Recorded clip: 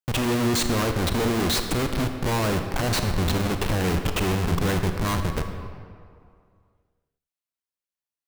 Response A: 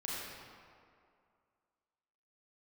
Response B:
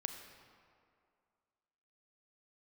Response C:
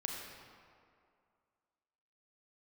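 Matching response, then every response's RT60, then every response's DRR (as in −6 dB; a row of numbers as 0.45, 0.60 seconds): B; 2.3, 2.3, 2.3 seconds; −6.5, 6.0, −0.5 decibels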